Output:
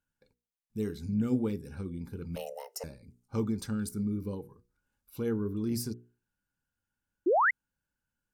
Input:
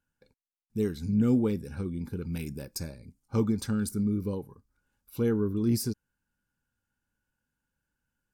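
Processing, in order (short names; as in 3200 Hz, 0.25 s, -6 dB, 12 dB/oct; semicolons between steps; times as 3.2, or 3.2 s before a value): 2.36–2.84 frequency shift +370 Hz; notches 60/120/180/240/300/360/420/480 Hz; 7.26–7.51 painted sound rise 310–2200 Hz -20 dBFS; gain -4 dB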